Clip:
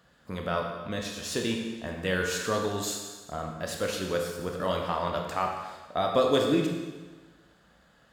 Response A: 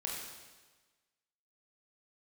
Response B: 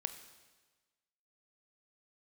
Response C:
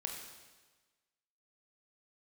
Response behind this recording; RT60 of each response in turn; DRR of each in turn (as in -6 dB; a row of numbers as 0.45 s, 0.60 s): C; 1.3 s, 1.3 s, 1.3 s; -3.0 dB, 9.0 dB, 1.0 dB